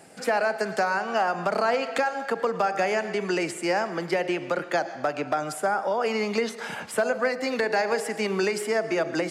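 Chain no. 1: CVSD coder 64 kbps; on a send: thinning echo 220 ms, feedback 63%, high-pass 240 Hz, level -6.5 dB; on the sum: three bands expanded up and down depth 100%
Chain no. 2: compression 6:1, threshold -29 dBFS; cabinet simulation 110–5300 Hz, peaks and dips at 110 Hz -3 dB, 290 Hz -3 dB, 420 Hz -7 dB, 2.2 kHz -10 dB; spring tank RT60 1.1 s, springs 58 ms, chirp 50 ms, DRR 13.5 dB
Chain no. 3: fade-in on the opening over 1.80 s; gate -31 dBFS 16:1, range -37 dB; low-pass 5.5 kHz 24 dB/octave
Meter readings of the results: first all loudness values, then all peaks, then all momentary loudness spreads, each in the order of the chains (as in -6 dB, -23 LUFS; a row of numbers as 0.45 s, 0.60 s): -26.0 LUFS, -35.0 LUFS, -27.0 LUFS; -10.0 dBFS, -17.5 dBFS, -13.0 dBFS; 5 LU, 3 LU, 5 LU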